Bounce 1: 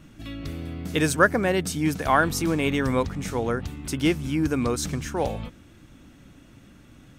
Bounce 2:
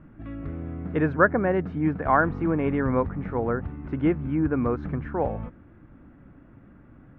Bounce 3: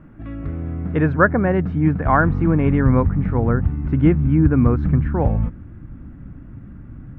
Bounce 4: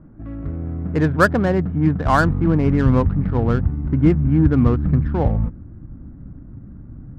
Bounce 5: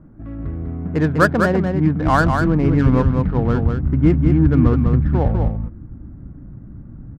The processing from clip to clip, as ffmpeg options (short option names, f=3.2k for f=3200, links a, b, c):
-af "lowpass=f=1.7k:w=0.5412,lowpass=f=1.7k:w=1.3066"
-af "asubboost=boost=4:cutoff=230,volume=4.5dB"
-af "adynamicsmooth=sensitivity=2:basefreq=1k"
-af "aecho=1:1:199:0.562"